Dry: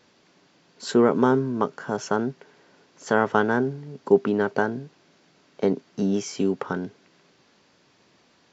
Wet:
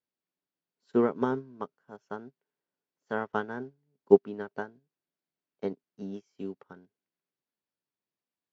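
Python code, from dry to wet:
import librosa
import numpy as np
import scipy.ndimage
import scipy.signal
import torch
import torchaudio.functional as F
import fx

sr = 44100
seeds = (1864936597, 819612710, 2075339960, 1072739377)

y = scipy.signal.sosfilt(scipy.signal.butter(2, 5800.0, 'lowpass', fs=sr, output='sos'), x)
y = fx.upward_expand(y, sr, threshold_db=-36.0, expansion=2.5)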